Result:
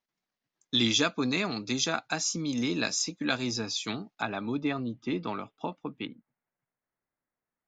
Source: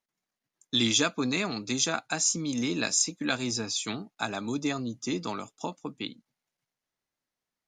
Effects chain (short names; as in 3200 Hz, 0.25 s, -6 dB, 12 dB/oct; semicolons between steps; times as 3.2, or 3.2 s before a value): LPF 5900 Hz 24 dB/oct, from 4.22 s 3300 Hz, from 6.06 s 2000 Hz